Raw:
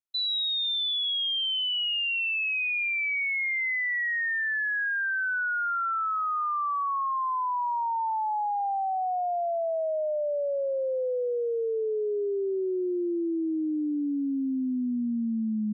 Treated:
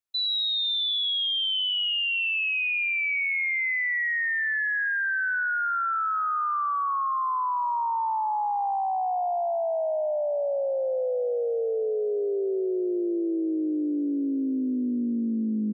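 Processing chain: frequency-shifting echo 83 ms, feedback 63%, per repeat +49 Hz, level -16 dB; trim +1.5 dB

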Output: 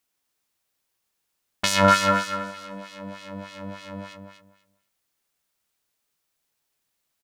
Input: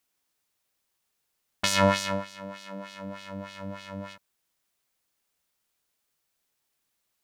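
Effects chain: 1.84–2.51 s: peaking EQ 1.4 kHz +14 dB 0.33 oct; in parallel at -8 dB: crossover distortion -32.5 dBFS; on the sum: feedback delay 241 ms, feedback 20%, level -7 dB

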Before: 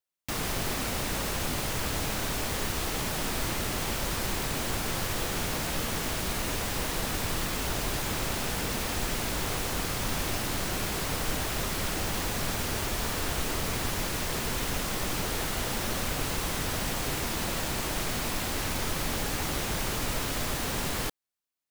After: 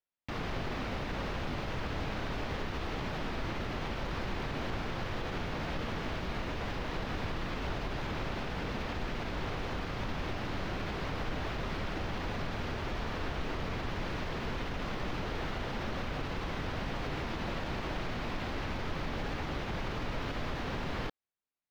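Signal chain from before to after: peak limiter -22 dBFS, peak gain reduction 5.5 dB; distance through air 260 m; trim -1.5 dB

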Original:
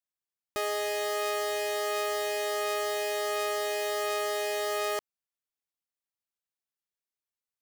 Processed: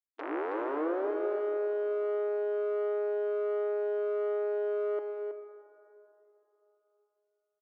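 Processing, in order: tape start-up on the opening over 1.09 s; low-pass that closes with the level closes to 450 Hz, closed at -30 dBFS; in parallel at 0 dB: peak limiter -29.5 dBFS, peak gain reduction 7.5 dB; on the sum: expander -23 dBFS; sine folder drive 10 dB, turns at -22.5 dBFS; brick-wall FIR high-pass 290 Hz; delay 322 ms -7.5 dB; on a send at -9 dB: reverberation RT60 3.4 s, pre-delay 24 ms; on the sum: trim -5.5 dB

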